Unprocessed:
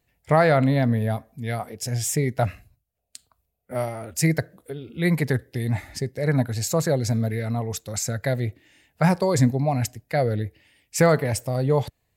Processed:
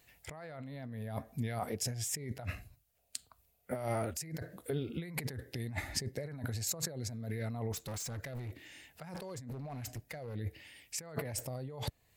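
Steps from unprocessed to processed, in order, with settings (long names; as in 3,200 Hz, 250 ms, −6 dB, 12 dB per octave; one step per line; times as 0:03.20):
compressor whose output falls as the input rises −32 dBFS, ratio −1
0:07.72–0:10.35: hard clipping −30.5 dBFS, distortion −13 dB
one half of a high-frequency compander encoder only
level −8 dB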